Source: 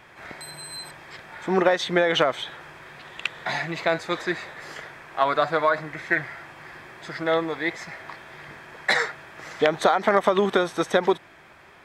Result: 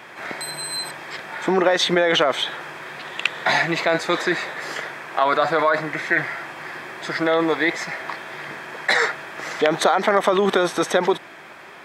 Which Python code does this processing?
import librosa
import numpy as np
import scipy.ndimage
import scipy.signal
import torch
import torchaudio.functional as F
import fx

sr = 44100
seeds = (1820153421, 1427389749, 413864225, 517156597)

p1 = scipy.signal.sosfilt(scipy.signal.butter(2, 190.0, 'highpass', fs=sr, output='sos'), x)
p2 = fx.over_compress(p1, sr, threshold_db=-26.0, ratio=-0.5)
p3 = p1 + F.gain(torch.from_numpy(p2), -1.0).numpy()
y = F.gain(torch.from_numpy(p3), 1.0).numpy()